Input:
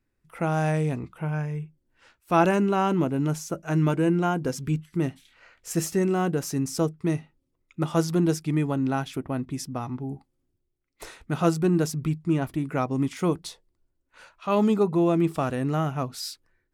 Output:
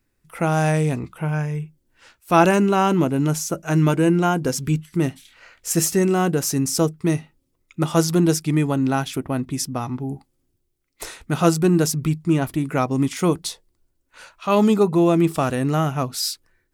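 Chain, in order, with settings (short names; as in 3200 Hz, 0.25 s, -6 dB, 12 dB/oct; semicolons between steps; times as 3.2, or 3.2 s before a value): high shelf 4000 Hz +7.5 dB; gain +5 dB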